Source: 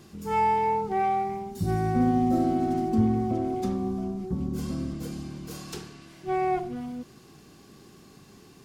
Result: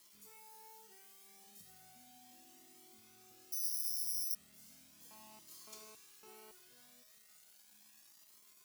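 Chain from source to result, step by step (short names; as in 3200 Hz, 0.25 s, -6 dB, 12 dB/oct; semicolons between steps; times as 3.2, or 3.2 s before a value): compressor 12:1, threshold -34 dBFS, peak gain reduction 17 dB; 0.54–1.44 HPF 130 Hz 24 dB/oct; bit-crush 8-bit; resonator 210 Hz, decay 1.5 s, mix 90%; 3.52–4.35 careless resampling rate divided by 8×, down filtered, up zero stuff; tilt +4 dB/oct; 5.11–6.51 GSM buzz -55 dBFS; cascading flanger rising 0.36 Hz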